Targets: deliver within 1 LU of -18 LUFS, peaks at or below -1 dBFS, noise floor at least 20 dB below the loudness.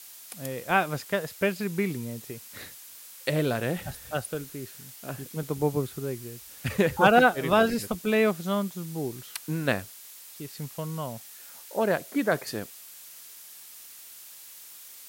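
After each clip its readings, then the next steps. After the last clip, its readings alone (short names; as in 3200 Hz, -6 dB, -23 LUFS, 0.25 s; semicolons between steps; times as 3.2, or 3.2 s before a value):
noise floor -47 dBFS; noise floor target -48 dBFS; loudness -28.0 LUFS; peak -7.5 dBFS; loudness target -18.0 LUFS
-> denoiser 6 dB, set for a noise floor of -47 dBFS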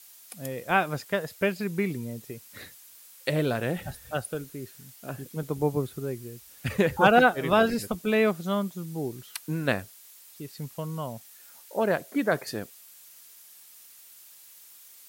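noise floor -52 dBFS; loudness -27.5 LUFS; peak -7.5 dBFS; loudness target -18.0 LUFS
-> gain +9.5 dB; limiter -1 dBFS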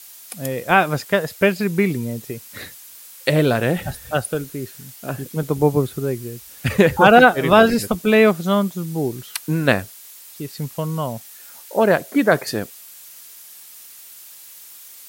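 loudness -18.5 LUFS; peak -1.0 dBFS; noise floor -42 dBFS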